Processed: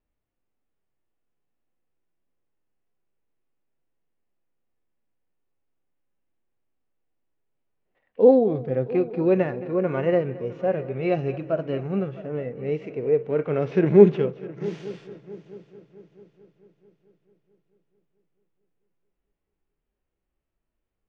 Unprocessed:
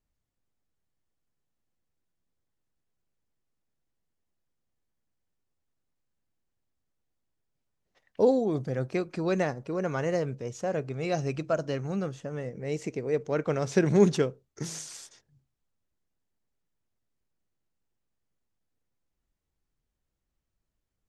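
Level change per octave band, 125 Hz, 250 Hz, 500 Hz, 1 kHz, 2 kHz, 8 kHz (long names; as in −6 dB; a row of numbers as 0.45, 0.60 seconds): +3.0 dB, +5.5 dB, +7.5 dB, +2.5 dB, 0.0 dB, below −20 dB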